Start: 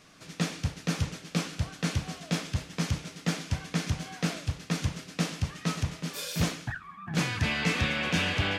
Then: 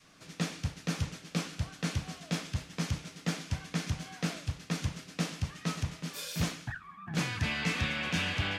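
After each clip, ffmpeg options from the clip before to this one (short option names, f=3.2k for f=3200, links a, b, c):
-af "adynamicequalizer=threshold=0.00447:dfrequency=450:dqfactor=1.1:tfrequency=450:tqfactor=1.1:attack=5:release=100:ratio=0.375:range=2.5:mode=cutabove:tftype=bell,volume=-3.5dB"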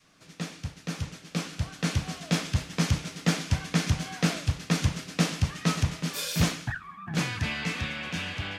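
-af "dynaudnorm=f=200:g=17:m=10dB,volume=-2dB"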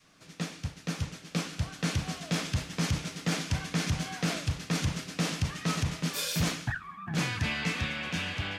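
-af "alimiter=limit=-19.5dB:level=0:latency=1:release=23"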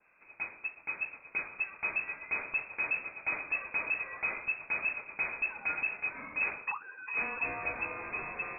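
-af "lowpass=f=2.3k:t=q:w=0.5098,lowpass=f=2.3k:t=q:w=0.6013,lowpass=f=2.3k:t=q:w=0.9,lowpass=f=2.3k:t=q:w=2.563,afreqshift=-2700,volume=-3.5dB"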